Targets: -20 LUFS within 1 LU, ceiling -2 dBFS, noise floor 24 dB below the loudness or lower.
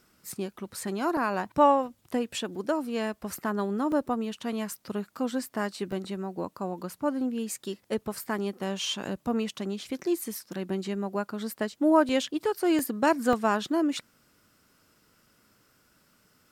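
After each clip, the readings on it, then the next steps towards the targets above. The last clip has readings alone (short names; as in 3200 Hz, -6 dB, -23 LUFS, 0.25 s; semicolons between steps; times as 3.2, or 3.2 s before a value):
dropouts 8; longest dropout 2.0 ms; loudness -29.5 LUFS; peak -9.0 dBFS; loudness target -20.0 LUFS
-> interpolate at 0.32/1.17/3.92/5.92/12.09/12.79/13.33/13.93, 2 ms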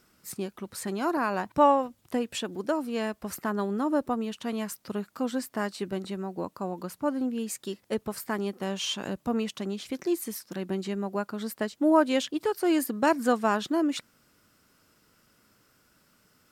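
dropouts 0; loudness -29.5 LUFS; peak -9.0 dBFS; loudness target -20.0 LUFS
-> gain +9.5 dB; limiter -2 dBFS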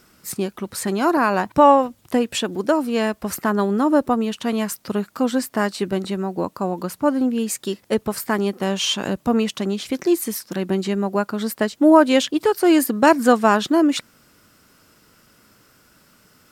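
loudness -20.0 LUFS; peak -2.0 dBFS; noise floor -57 dBFS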